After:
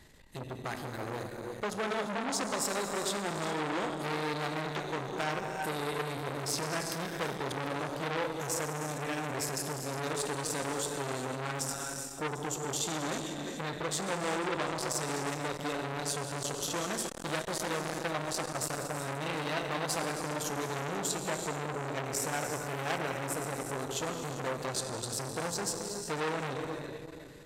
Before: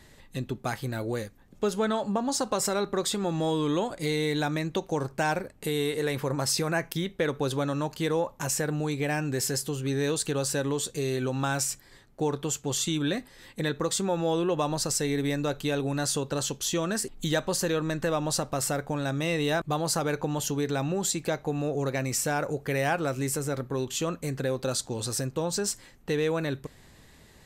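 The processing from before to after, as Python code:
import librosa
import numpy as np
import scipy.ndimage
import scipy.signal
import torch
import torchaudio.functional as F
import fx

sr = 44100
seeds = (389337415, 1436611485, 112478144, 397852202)

p1 = x + fx.echo_multitap(x, sr, ms=(359, 493, 742), db=(-14.0, -16.5, -19.5), dry=0)
p2 = fx.rev_gated(p1, sr, seeds[0], gate_ms=440, shape='flat', drr_db=3.0)
p3 = fx.transformer_sat(p2, sr, knee_hz=2900.0)
y = p3 * 10.0 ** (-2.5 / 20.0)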